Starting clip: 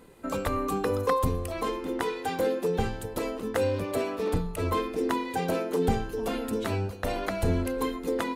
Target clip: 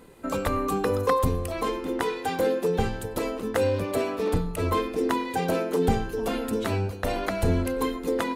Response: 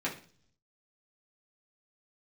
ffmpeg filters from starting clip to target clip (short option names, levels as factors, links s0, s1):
-filter_complex "[0:a]asplit=2[s0][s1];[1:a]atrim=start_sample=2205,adelay=93[s2];[s1][s2]afir=irnorm=-1:irlink=0,volume=0.0422[s3];[s0][s3]amix=inputs=2:normalize=0,volume=1.33"